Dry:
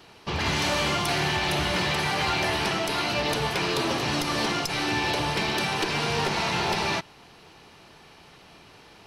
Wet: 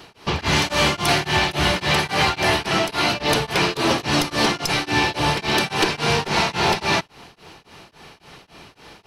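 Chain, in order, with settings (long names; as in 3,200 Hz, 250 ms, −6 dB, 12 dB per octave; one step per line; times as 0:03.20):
tremolo along a rectified sine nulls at 3.6 Hz
level +8.5 dB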